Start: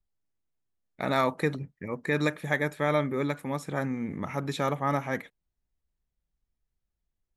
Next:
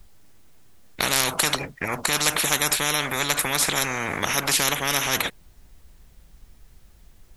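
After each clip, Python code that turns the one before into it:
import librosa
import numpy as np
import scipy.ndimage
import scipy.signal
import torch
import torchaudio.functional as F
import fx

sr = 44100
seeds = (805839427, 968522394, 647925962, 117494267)

y = fx.spectral_comp(x, sr, ratio=10.0)
y = y * 10.0 ** (8.5 / 20.0)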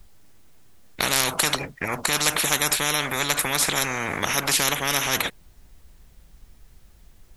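y = x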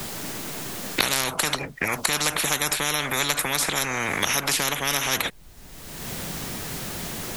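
y = fx.band_squash(x, sr, depth_pct=100)
y = y * 10.0 ** (-1.5 / 20.0)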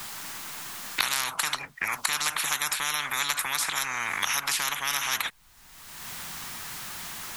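y = fx.low_shelf_res(x, sr, hz=720.0, db=-10.5, q=1.5)
y = y * 10.0 ** (-4.0 / 20.0)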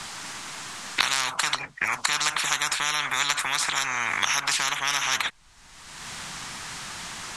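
y = scipy.signal.sosfilt(scipy.signal.butter(4, 8700.0, 'lowpass', fs=sr, output='sos'), x)
y = y * 10.0 ** (3.5 / 20.0)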